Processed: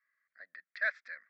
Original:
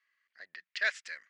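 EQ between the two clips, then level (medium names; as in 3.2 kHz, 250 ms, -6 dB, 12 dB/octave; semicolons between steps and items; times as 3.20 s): low-pass 3.6 kHz 24 dB/octave; bass shelf 230 Hz -5 dB; static phaser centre 590 Hz, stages 8; 0.0 dB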